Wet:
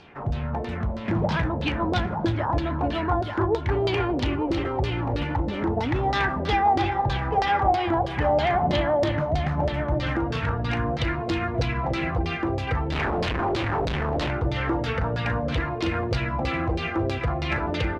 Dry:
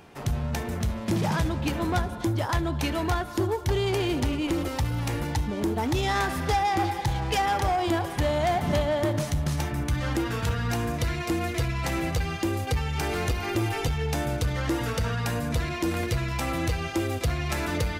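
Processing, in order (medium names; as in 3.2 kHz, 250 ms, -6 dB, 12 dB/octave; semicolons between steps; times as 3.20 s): delay 886 ms -7 dB; 12.92–14.31 s: Schmitt trigger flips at -33.5 dBFS; LFO low-pass saw down 3.1 Hz 520–4700 Hz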